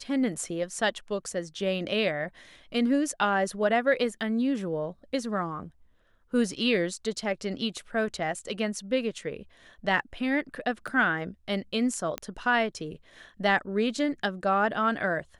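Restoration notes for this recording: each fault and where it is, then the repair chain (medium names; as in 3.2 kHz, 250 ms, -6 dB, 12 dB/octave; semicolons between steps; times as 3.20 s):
10.87–10.88 s: dropout 5.5 ms
12.18 s: pop -16 dBFS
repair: de-click; interpolate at 10.87 s, 5.5 ms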